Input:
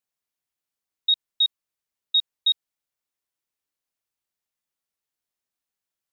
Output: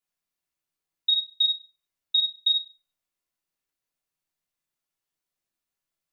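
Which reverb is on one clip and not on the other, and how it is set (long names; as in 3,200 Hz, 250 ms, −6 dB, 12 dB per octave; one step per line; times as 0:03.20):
rectangular room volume 510 cubic metres, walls furnished, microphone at 3.1 metres
level −4 dB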